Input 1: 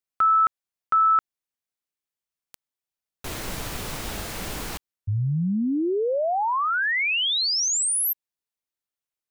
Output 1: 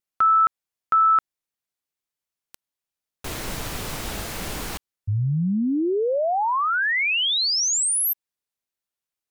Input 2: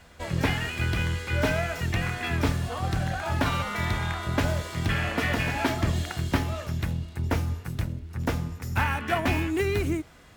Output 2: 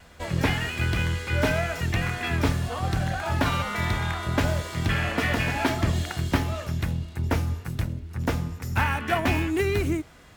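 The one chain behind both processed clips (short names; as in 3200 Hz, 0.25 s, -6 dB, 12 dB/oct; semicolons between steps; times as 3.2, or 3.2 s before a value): vibrato 0.37 Hz 6.2 cents; gain +1.5 dB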